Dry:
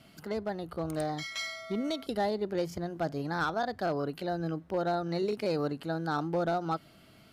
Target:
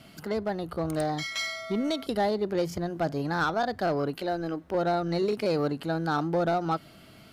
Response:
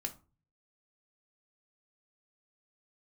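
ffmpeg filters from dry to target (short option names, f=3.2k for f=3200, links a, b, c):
-filter_complex "[0:a]asplit=2[a][b];[b]asoftclip=type=tanh:threshold=-35dB,volume=-7dB[c];[a][c]amix=inputs=2:normalize=0,asettb=1/sr,asplit=3[d][e][f];[d]atrim=end=4.144[g];[e]atrim=start=4.14:end=4.75,asetpts=PTS-STARTPTS,afade=t=in:d=0.004:c=qsin,afade=t=out:st=0.606:d=0.004:c=qsin,equalizer=f=140:t=o:w=0.61:g=-13.5[h];[f]atrim=start=4.746[i];[g][h]acrossfade=d=0.004:c1=hsin:c2=qsin[j];[j][i]acrossfade=d=0.004:c1=qsin:c2=hsin,volume=2.5dB"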